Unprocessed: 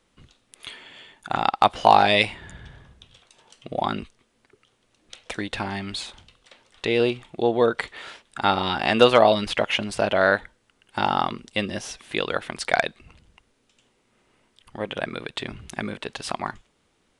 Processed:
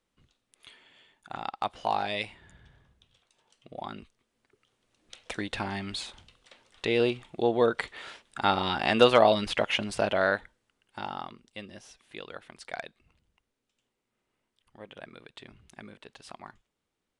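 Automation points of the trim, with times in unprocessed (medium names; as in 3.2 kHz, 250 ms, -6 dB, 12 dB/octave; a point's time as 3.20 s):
3.91 s -13.5 dB
5.31 s -4 dB
10.00 s -4 dB
11.36 s -16.5 dB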